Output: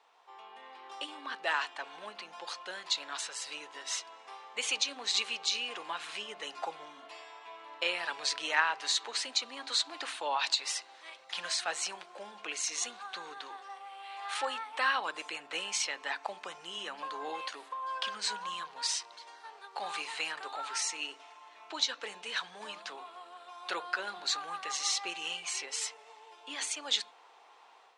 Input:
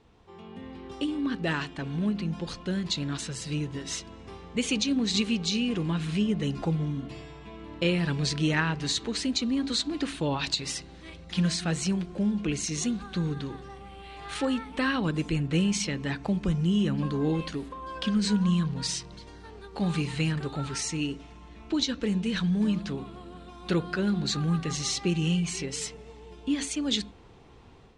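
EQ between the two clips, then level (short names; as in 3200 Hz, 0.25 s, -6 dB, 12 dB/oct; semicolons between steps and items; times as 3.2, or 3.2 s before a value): ladder high-pass 650 Hz, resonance 35%; +6.5 dB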